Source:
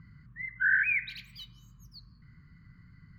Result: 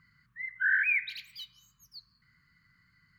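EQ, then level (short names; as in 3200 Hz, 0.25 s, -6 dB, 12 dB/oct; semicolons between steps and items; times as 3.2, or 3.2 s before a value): tilt shelf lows -10 dB, about 910 Hz; low shelf 120 Hz -3.5 dB; -6.0 dB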